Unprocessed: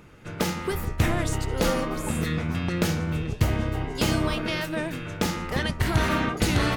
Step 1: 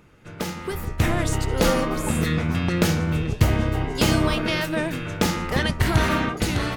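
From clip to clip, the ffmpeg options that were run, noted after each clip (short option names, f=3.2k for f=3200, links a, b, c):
-af "dynaudnorm=f=280:g=7:m=9dB,volume=-3.5dB"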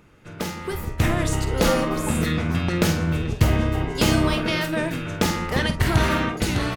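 -filter_complex "[0:a]asplit=2[a][b];[b]adelay=48,volume=-11dB[c];[a][c]amix=inputs=2:normalize=0"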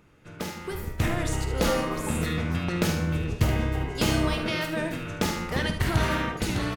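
-af "aecho=1:1:75|150|225:0.316|0.0917|0.0266,volume=-5dB"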